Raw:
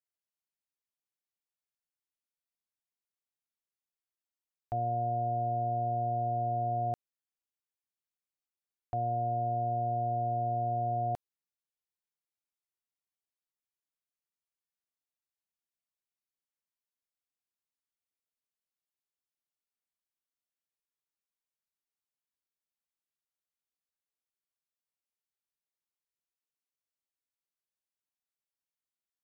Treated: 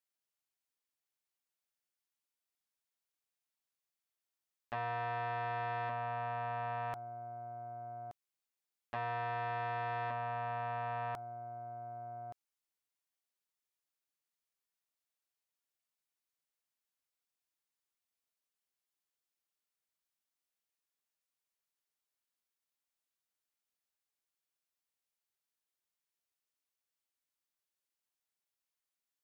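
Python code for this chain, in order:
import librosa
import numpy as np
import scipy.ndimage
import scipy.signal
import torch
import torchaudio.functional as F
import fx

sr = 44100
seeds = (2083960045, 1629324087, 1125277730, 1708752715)

y = fx.low_shelf(x, sr, hz=350.0, db=-7.0)
y = y + 10.0 ** (-13.5 / 20.0) * np.pad(y, (int(1173 * sr / 1000.0), 0))[:len(y)]
y = fx.transformer_sat(y, sr, knee_hz=1200.0)
y = y * 10.0 ** (2.0 / 20.0)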